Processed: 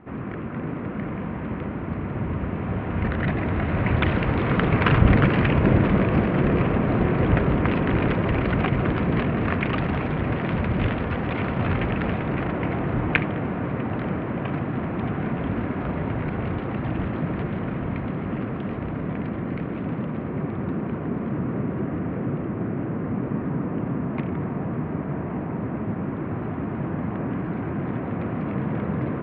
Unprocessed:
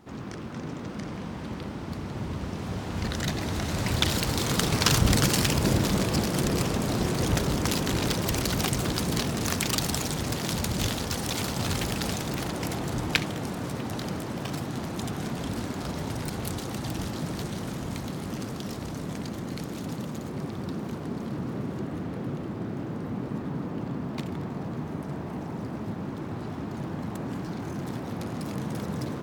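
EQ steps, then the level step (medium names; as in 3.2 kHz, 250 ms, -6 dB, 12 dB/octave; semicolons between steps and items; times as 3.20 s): steep low-pass 2.5 kHz 36 dB/octave; band-stop 850 Hz, Q 13; +6.0 dB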